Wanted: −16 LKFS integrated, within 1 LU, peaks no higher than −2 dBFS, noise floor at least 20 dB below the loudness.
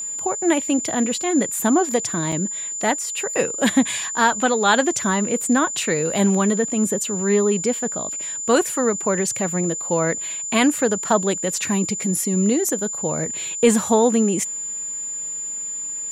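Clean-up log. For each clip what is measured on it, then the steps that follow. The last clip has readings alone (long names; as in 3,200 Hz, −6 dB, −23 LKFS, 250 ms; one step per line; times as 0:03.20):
number of dropouts 1; longest dropout 4.0 ms; interfering tone 7,100 Hz; level of the tone −26 dBFS; integrated loudness −20.5 LKFS; sample peak −4.5 dBFS; target loudness −16.0 LKFS
→ repair the gap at 0:02.32, 4 ms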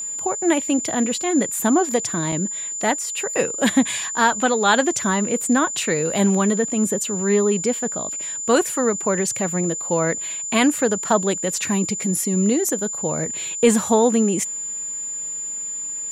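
number of dropouts 0; interfering tone 7,100 Hz; level of the tone −26 dBFS
→ notch filter 7,100 Hz, Q 30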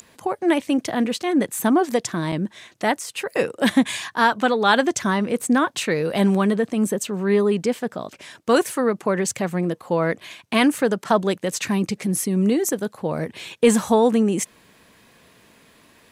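interfering tone none found; integrated loudness −21.5 LKFS; sample peak −5.0 dBFS; target loudness −16.0 LKFS
→ level +5.5 dB
brickwall limiter −2 dBFS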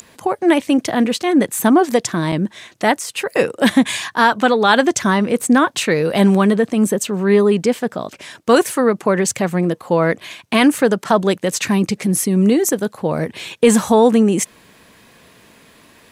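integrated loudness −16.5 LKFS; sample peak −2.0 dBFS; background noise floor −49 dBFS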